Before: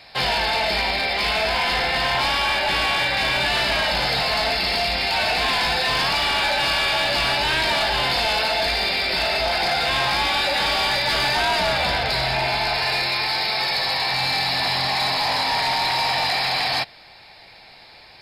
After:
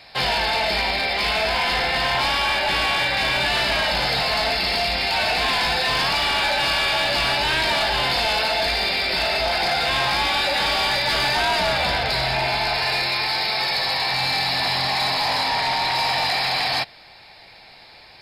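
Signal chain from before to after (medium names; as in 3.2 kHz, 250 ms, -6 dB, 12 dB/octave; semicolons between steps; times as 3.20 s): 15.48–15.95 s: treble shelf 8.1 kHz -6 dB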